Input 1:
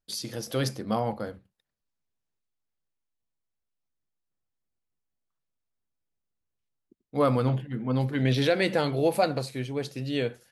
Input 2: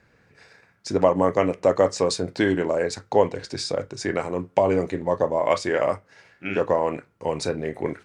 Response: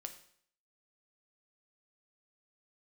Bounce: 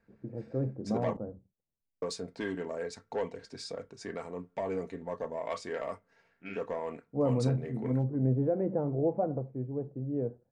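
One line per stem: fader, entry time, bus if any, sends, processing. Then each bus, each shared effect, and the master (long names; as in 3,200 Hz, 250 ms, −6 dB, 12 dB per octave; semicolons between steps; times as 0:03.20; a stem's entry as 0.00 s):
−2.5 dB, 0.00 s, no send, Bessel low-pass filter 540 Hz, order 4
−13.0 dB, 0.00 s, muted 0:01.17–0:02.02, no send, soft clipping −12.5 dBFS, distortion −15 dB; comb filter 4.4 ms, depth 45%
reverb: not used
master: one half of a high-frequency compander decoder only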